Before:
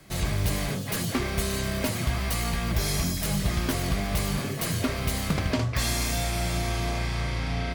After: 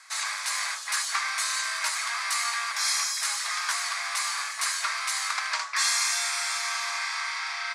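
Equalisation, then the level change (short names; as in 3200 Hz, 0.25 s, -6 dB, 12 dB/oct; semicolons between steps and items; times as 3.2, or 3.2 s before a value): steep high-pass 1000 Hz 36 dB/oct; LPF 9200 Hz 24 dB/oct; bell 3000 Hz -10.5 dB 0.48 oct; +8.0 dB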